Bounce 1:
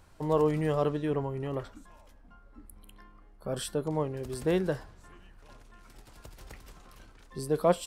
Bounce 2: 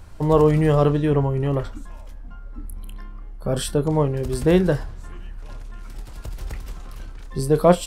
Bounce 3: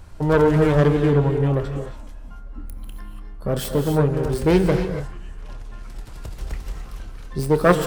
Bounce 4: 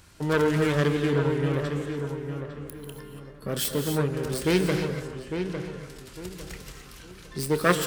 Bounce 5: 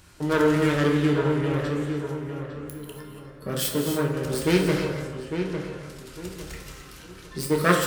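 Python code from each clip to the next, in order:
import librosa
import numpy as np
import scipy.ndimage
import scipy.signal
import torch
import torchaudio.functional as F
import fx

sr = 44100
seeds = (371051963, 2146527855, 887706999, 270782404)

y1 = fx.low_shelf(x, sr, hz=130.0, db=11.0)
y1 = fx.doubler(y1, sr, ms=28.0, db=-13.5)
y1 = y1 * librosa.db_to_amplitude(8.5)
y2 = fx.self_delay(y1, sr, depth_ms=0.36)
y2 = fx.rev_gated(y2, sr, seeds[0], gate_ms=310, shape='rising', drr_db=6.0)
y3 = fx.highpass(y2, sr, hz=460.0, slope=6)
y3 = fx.peak_eq(y3, sr, hz=740.0, db=-12.0, octaves=1.8)
y3 = fx.echo_filtered(y3, sr, ms=854, feedback_pct=32, hz=2100.0, wet_db=-7.0)
y3 = y3 * librosa.db_to_amplitude(3.5)
y4 = fx.rev_plate(y3, sr, seeds[1], rt60_s=0.75, hf_ratio=0.6, predelay_ms=0, drr_db=2.5)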